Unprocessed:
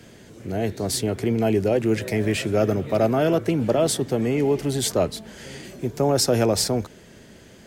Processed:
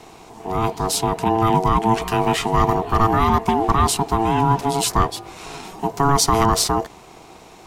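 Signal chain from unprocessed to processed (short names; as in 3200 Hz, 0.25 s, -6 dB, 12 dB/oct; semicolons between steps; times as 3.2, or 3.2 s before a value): ring modulator 560 Hz; gain +6.5 dB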